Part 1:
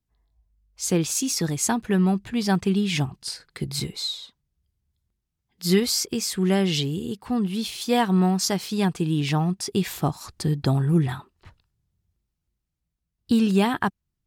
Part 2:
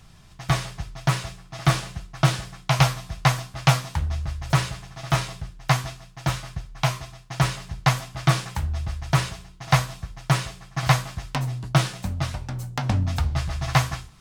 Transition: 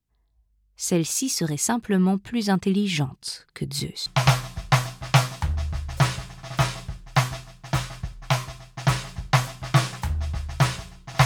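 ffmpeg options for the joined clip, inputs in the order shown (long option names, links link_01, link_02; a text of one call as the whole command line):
ffmpeg -i cue0.wav -i cue1.wav -filter_complex "[0:a]apad=whole_dur=11.25,atrim=end=11.25,atrim=end=4.062[link_01];[1:a]atrim=start=2.588:end=9.78[link_02];[link_01][link_02]acrossfade=duration=0.004:curve1=hsin:curve2=hsin" out.wav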